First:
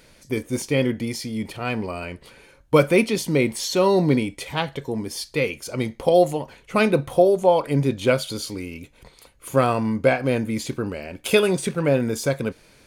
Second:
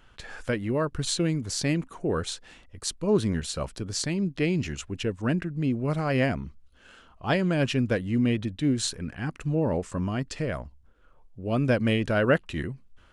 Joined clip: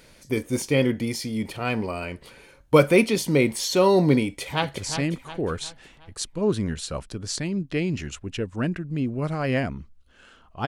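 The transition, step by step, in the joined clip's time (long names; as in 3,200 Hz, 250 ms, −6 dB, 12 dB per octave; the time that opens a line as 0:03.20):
first
0:04.26–0:04.78: delay throw 360 ms, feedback 45%, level −8.5 dB
0:04.78: continue with second from 0:01.44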